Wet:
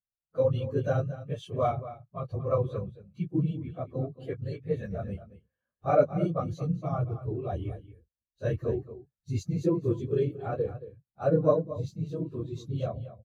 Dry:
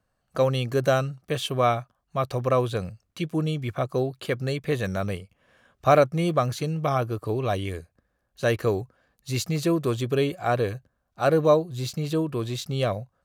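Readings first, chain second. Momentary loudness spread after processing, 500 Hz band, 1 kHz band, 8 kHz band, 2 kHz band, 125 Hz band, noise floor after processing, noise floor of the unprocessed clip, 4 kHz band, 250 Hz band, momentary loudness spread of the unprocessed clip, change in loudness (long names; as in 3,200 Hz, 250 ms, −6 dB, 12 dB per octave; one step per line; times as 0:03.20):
12 LU, −5.0 dB, −8.5 dB, below −15 dB, −14.5 dB, −3.5 dB, below −85 dBFS, −75 dBFS, below −15 dB, −4.5 dB, 10 LU, −5.0 dB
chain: random phases in long frames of 50 ms
low-shelf EQ 340 Hz +4.5 dB
single-tap delay 226 ms −9.5 dB
dynamic equaliser 6,300 Hz, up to +6 dB, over −58 dBFS, Q 7.6
every bin expanded away from the loudest bin 1.5 to 1
level −5 dB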